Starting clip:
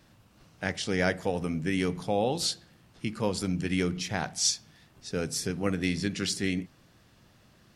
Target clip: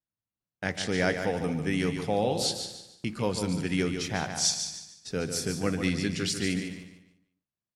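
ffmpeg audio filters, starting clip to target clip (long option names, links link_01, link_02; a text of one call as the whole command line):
ffmpeg -i in.wav -filter_complex "[0:a]asplit=2[link_01][link_02];[link_02]aecho=0:1:203:0.188[link_03];[link_01][link_03]amix=inputs=2:normalize=0,agate=range=-39dB:threshold=-47dB:ratio=16:detection=peak,asplit=2[link_04][link_05];[link_05]aecho=0:1:146|292|438|584:0.398|0.135|0.046|0.0156[link_06];[link_04][link_06]amix=inputs=2:normalize=0" out.wav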